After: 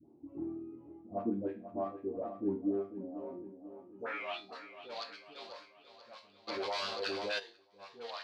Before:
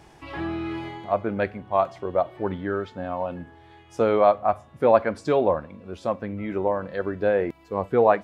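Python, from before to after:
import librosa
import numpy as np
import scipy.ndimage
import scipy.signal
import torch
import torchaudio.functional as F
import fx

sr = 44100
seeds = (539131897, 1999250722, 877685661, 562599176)

p1 = fx.wiener(x, sr, points=25)
p2 = fx.dereverb_blind(p1, sr, rt60_s=2.0)
p3 = fx.resonator_bank(p2, sr, root=39, chord='major', decay_s=0.35)
p4 = fx.cheby_harmonics(p3, sr, harmonics=(8,), levels_db=(-29,), full_scale_db=-17.5)
p5 = fx.filter_sweep_bandpass(p4, sr, from_hz=280.0, to_hz=4400.0, start_s=3.28, end_s=4.41, q=5.2)
p6 = fx.dispersion(p5, sr, late='highs', ms=73.0, hz=710.0)
p7 = p6 + fx.echo_feedback(p6, sr, ms=490, feedback_pct=54, wet_db=-12.0, dry=0)
p8 = fx.env_flatten(p7, sr, amount_pct=70, at=(6.47, 7.38), fade=0.02)
y = p8 * librosa.db_to_amplitude(16.5)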